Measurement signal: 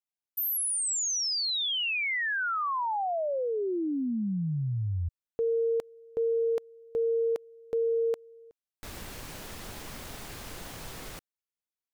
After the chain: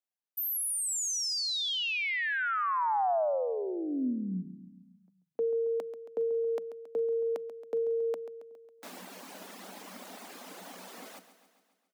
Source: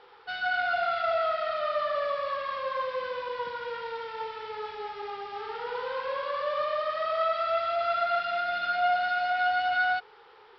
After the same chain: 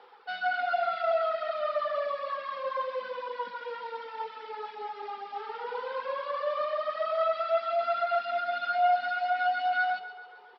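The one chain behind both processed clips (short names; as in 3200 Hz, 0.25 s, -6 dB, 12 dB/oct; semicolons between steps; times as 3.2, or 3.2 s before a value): reverb removal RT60 1 s; rippled Chebyshev high-pass 180 Hz, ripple 6 dB; on a send: feedback echo 0.137 s, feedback 59%, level -13 dB; on the sum: gain +3 dB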